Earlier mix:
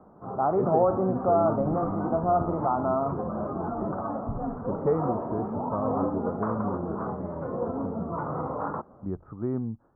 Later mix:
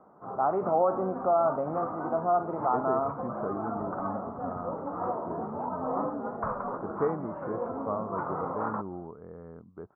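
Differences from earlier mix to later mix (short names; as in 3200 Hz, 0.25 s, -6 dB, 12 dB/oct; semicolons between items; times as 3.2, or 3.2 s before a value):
speech: entry +2.15 s; master: add tilt +3 dB/oct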